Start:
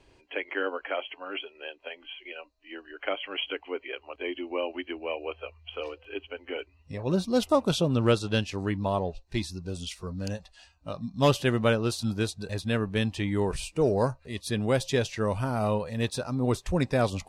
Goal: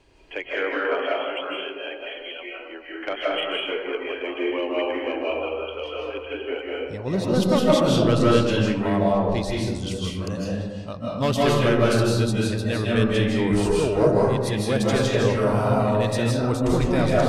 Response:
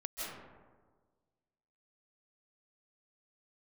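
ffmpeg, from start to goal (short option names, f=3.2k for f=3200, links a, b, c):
-filter_complex "[0:a]asoftclip=type=tanh:threshold=-17.5dB[a];[1:a]atrim=start_sample=2205[b];[a][b]afir=irnorm=-1:irlink=0,volume=6dB"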